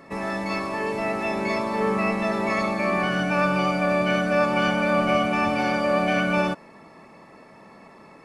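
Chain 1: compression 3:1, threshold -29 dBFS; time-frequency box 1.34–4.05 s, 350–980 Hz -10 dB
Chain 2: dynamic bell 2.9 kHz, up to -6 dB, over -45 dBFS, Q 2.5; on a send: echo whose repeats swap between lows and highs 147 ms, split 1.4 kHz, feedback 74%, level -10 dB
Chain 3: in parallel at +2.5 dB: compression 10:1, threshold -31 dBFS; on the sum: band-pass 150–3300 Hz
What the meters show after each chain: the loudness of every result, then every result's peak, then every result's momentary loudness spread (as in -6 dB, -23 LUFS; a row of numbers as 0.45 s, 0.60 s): -31.0 LUFS, -23.0 LUFS, -21.0 LUFS; -18.0 dBFS, -9.0 dBFS, -8.5 dBFS; 19 LU, 9 LU, 4 LU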